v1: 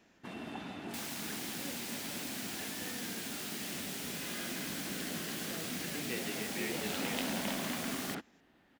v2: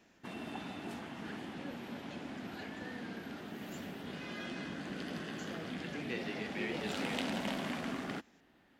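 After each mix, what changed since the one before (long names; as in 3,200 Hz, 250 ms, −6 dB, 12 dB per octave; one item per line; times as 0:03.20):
second sound: muted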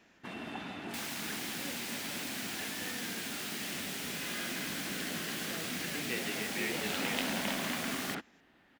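second sound: unmuted
master: add parametric band 2,000 Hz +4.5 dB 2.2 octaves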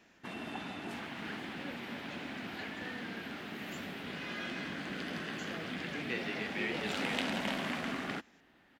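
second sound: add high-frequency loss of the air 430 metres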